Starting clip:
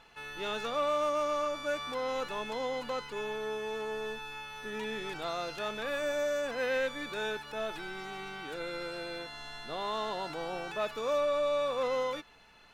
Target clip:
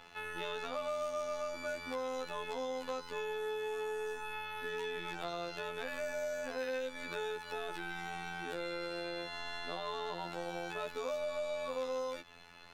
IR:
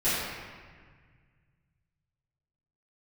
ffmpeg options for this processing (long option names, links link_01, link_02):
-filter_complex "[0:a]afftfilt=real='hypot(re,im)*cos(PI*b)':imag='0':win_size=2048:overlap=0.75,acrossover=split=390|3200[link_01][link_02][link_03];[link_01]acompressor=threshold=-51dB:ratio=4[link_04];[link_02]acompressor=threshold=-46dB:ratio=4[link_05];[link_03]acompressor=threshold=-57dB:ratio=4[link_06];[link_04][link_05][link_06]amix=inputs=3:normalize=0,volume=6dB"